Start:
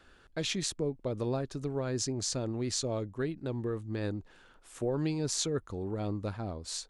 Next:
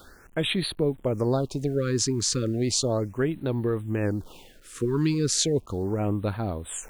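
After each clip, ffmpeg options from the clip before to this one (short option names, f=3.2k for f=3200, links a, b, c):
-af "acrusher=bits=10:mix=0:aa=0.000001,areverse,acompressor=mode=upward:threshold=-45dB:ratio=2.5,areverse,afftfilt=real='re*(1-between(b*sr/1024,630*pow(6500/630,0.5+0.5*sin(2*PI*0.35*pts/sr))/1.41,630*pow(6500/630,0.5+0.5*sin(2*PI*0.35*pts/sr))*1.41))':imag='im*(1-between(b*sr/1024,630*pow(6500/630,0.5+0.5*sin(2*PI*0.35*pts/sr))/1.41,630*pow(6500/630,0.5+0.5*sin(2*PI*0.35*pts/sr))*1.41))':win_size=1024:overlap=0.75,volume=8dB"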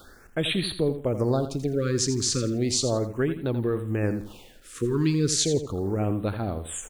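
-filter_complex "[0:a]bandreject=f=960:w=20,asplit=2[a][b];[b]aecho=0:1:84|168|252:0.282|0.0789|0.0221[c];[a][c]amix=inputs=2:normalize=0"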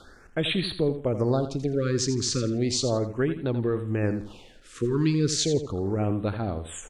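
-af "lowpass=6.5k"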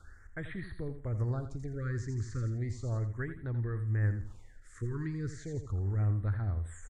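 -filter_complex "[0:a]acrossover=split=2600[a][b];[b]acompressor=threshold=-44dB:ratio=4:attack=1:release=60[c];[a][c]amix=inputs=2:normalize=0,firequalizer=gain_entry='entry(100,0);entry(150,-14);entry(240,-18);entry(560,-21);entry(1900,-5);entry(2600,-30);entry(7200,-9);entry(11000,-14)':delay=0.05:min_phase=1,volume=2.5dB"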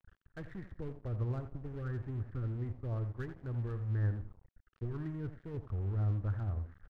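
-af "lowpass=f=1.5k:w=0.5412,lowpass=f=1.5k:w=1.3066,aeval=exprs='sgn(val(0))*max(abs(val(0))-0.00335,0)':c=same,volume=-2dB"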